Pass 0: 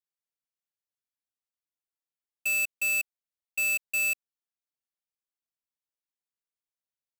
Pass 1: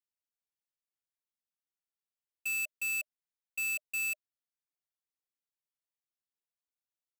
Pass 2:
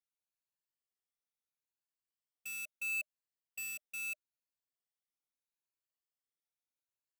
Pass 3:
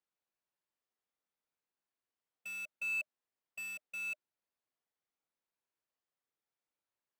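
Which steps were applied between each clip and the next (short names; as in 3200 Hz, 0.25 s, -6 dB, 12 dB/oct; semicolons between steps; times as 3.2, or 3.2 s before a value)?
notch 610 Hz, Q 12; gain -6.5 dB
moving spectral ripple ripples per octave 1.4, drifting +0.76 Hz, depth 10 dB; gain -6 dB
LPF 1300 Hz 6 dB/oct; low shelf 150 Hz -11.5 dB; gain +8 dB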